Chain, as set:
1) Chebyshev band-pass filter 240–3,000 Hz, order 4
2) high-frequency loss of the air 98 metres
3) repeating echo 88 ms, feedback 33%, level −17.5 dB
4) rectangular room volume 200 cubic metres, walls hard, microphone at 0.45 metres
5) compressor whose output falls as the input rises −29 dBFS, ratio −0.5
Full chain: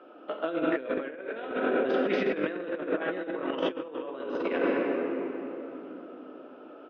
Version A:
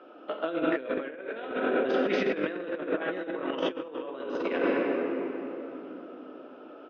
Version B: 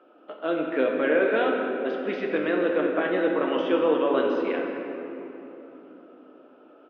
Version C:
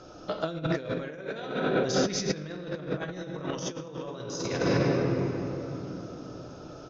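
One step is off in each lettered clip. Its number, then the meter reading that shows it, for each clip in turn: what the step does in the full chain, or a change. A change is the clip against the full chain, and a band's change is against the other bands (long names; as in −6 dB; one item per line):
2, 4 kHz band +1.5 dB
5, 125 Hz band −2.5 dB
1, 125 Hz band +18.5 dB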